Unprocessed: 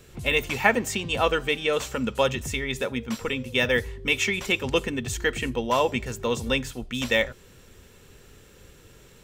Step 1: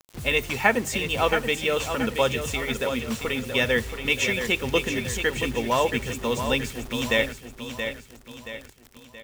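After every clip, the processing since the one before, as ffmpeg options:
-filter_complex "[0:a]acrusher=bits=6:mix=0:aa=0.000001,asplit=2[s0][s1];[s1]aecho=0:1:676|1352|2028|2704|3380:0.398|0.175|0.0771|0.0339|0.0149[s2];[s0][s2]amix=inputs=2:normalize=0"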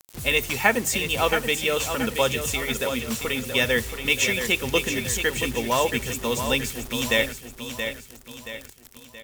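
-af "aemphasis=mode=production:type=cd"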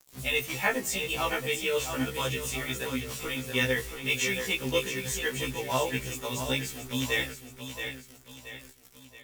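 -af "flanger=delay=5.8:depth=2.5:regen=48:speed=1.8:shape=triangular,afftfilt=real='re*1.73*eq(mod(b,3),0)':imag='im*1.73*eq(mod(b,3),0)':win_size=2048:overlap=0.75"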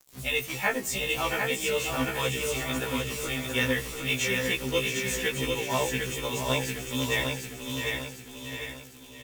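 -af "aecho=1:1:750|1500|2250|3000|3750:0.631|0.252|0.101|0.0404|0.0162"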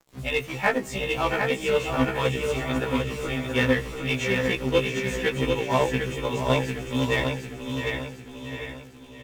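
-filter_complex "[0:a]lowpass=f=1500:p=1,asplit=2[s0][s1];[s1]acrusher=bits=3:mix=0:aa=0.5,volume=0.266[s2];[s0][s2]amix=inputs=2:normalize=0,volume=1.78"

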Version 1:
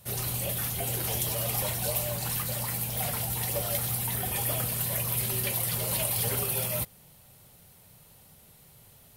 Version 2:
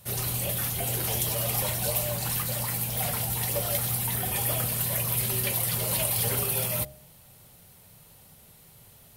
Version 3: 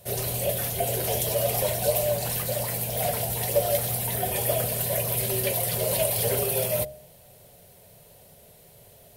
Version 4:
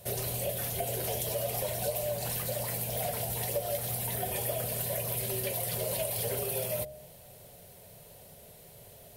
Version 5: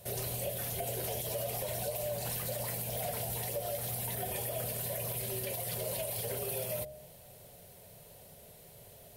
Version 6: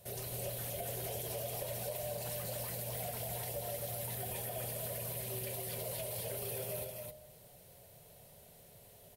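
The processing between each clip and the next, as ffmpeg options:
-af "bandreject=f=67.92:t=h:w=4,bandreject=f=135.84:t=h:w=4,bandreject=f=203.76:t=h:w=4,bandreject=f=271.68:t=h:w=4,bandreject=f=339.6:t=h:w=4,bandreject=f=407.52:t=h:w=4,bandreject=f=475.44:t=h:w=4,bandreject=f=543.36:t=h:w=4,bandreject=f=611.28:t=h:w=4,bandreject=f=679.2:t=h:w=4,bandreject=f=747.12:t=h:w=4,bandreject=f=815.04:t=h:w=4,bandreject=f=882.96:t=h:w=4,volume=1.26"
-af "superequalizer=7b=2.51:8b=3.16:10b=0.631"
-af "acompressor=threshold=0.0251:ratio=3"
-af "alimiter=level_in=1.06:limit=0.0631:level=0:latency=1:release=44,volume=0.944,volume=0.794"
-af "aecho=1:1:265:0.668,volume=0.531"

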